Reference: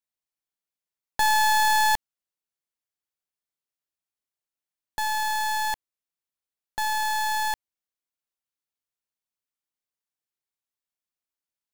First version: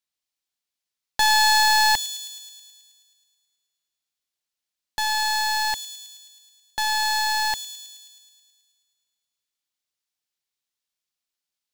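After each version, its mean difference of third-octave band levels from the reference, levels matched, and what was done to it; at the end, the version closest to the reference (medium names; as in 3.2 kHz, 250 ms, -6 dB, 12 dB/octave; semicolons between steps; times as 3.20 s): 2.0 dB: peaking EQ 4.1 kHz +8.5 dB 1.9 oct; on a send: feedback echo behind a high-pass 107 ms, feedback 68%, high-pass 5.2 kHz, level -5.5 dB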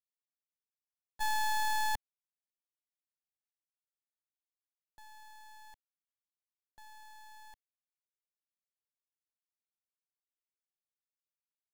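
8.0 dB: gate -20 dBFS, range -33 dB; bass shelf 160 Hz +7.5 dB; trim +3.5 dB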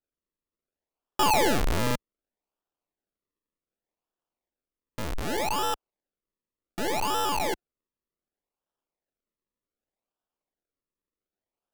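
14.0 dB: decimation with a swept rate 40×, swing 100% 0.66 Hz; peaking EQ 110 Hz -11 dB 2.1 oct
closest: first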